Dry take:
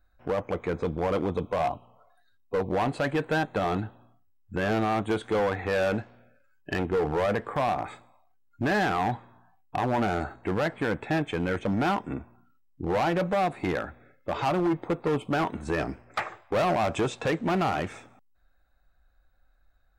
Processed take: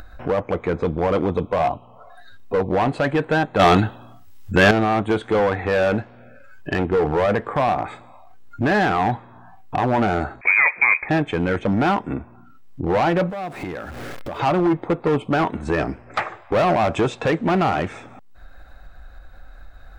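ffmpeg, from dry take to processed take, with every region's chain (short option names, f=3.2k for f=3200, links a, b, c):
-filter_complex "[0:a]asettb=1/sr,asplit=3[a][b][c];[a]atrim=end=3.594[d];[b]atrim=start=3.59:end=4.71,asetpts=PTS-STARTPTS,afade=t=in:d=0.004:c=qsin,afade=t=out:st=1.116:d=0.004:c=qsin,highshelf=f=2.1k:g=12,acontrast=44[e];[c]atrim=start=4.706[f];[d][e]acrossfade=d=0.004:c1=hsin:c2=qsin[g];[g][f]acrossfade=d=0.004:c1=qsin:c2=hsin,asettb=1/sr,asplit=3[h][i][j];[h]atrim=end=10.414[k];[i]atrim=start=10.41:end=11.09,asetpts=PTS-STARTPTS,afade=t=in:d=0.004:c=qsin,afade=t=out:st=0.676:d=0.004:c=qsin,equalizer=f=260:w=0.44:g=6.5,lowpass=f=2.2k:t=q:w=0.5098,lowpass=f=2.2k:t=q:w=0.6013,lowpass=f=2.2k:t=q:w=0.9,lowpass=f=2.2k:t=q:w=2.563,afreqshift=-2600[l];[j]atrim=start=11.086[m];[k][l]acrossfade=d=0.004:c1=hsin:c2=qsin[n];[n][m]acrossfade=d=0.004:c1=qsin:c2=hsin,asettb=1/sr,asplit=3[o][p][q];[o]atrim=end=13.304[r];[p]atrim=start=13.3:end=14.4,asetpts=PTS-STARTPTS,afade=t=in:d=0.004:c=qsin,afade=t=out:st=1.096:d=0.004:c=qsin,aeval=exprs='val(0)+0.5*0.00708*sgn(val(0))':c=same,highshelf=f=8.2k:g=6.5,acompressor=threshold=-46dB:ratio=2:attack=3.2:release=140:knee=1:detection=peak[s];[q]atrim=start=14.396[t];[r][s]acrossfade=d=0.004:c1=hsin:c2=qsin[u];[u][t]acrossfade=d=0.004:c1=qsin:c2=hsin,lowpass=f=3.9k:p=1,acompressor=mode=upward:threshold=-31dB:ratio=2.5,volume=7dB"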